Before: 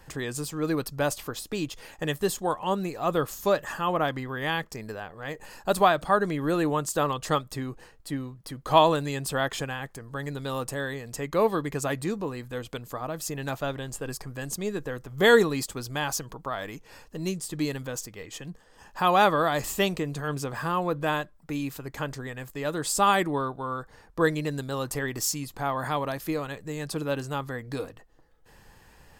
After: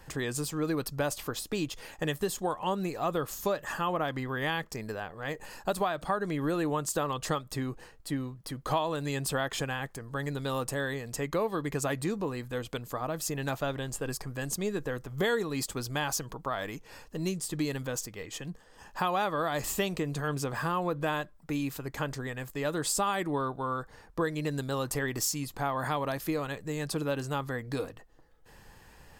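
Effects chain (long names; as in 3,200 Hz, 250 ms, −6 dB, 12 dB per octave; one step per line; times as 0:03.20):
downward compressor 6 to 1, threshold −26 dBFS, peak gain reduction 13 dB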